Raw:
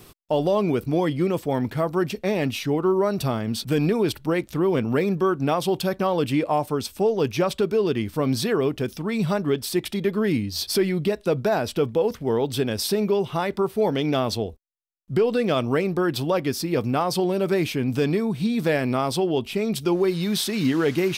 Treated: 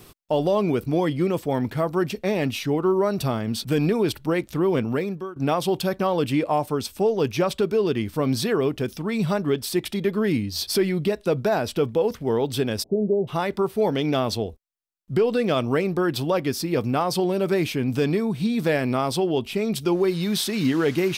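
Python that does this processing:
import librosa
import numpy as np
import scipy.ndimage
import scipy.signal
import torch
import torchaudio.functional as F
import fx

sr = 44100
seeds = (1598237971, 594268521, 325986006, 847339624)

y = fx.steep_lowpass(x, sr, hz=680.0, slope=48, at=(12.82, 13.27), fade=0.02)
y = fx.edit(y, sr, fx.fade_out_to(start_s=4.8, length_s=0.56, floor_db=-20.5), tone=tone)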